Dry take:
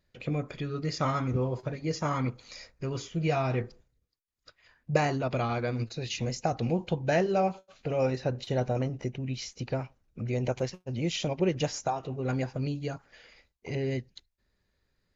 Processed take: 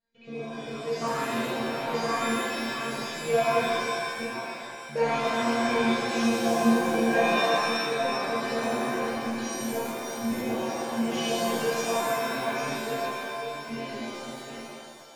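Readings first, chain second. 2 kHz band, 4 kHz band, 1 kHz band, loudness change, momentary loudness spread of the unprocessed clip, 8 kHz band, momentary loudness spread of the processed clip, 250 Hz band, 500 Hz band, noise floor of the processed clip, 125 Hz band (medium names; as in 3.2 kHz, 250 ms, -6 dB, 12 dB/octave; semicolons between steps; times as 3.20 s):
+10.0 dB, +7.5 dB, +6.5 dB, +3.5 dB, 9 LU, no reading, 12 LU, +4.5 dB, +3.5 dB, -41 dBFS, -11.0 dB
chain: chunks repeated in reverse 487 ms, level -5.5 dB; bass shelf 62 Hz -12 dB; level rider gain up to 4.5 dB; low-pass 3.6 kHz 6 dB/octave; feedback comb 230 Hz, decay 0.53 s, harmonics all, mix 100%; crackling interface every 0.42 s zero, from 0.66 s; pitch-shifted reverb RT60 1.7 s, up +7 st, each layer -2 dB, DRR -7 dB; trim +8 dB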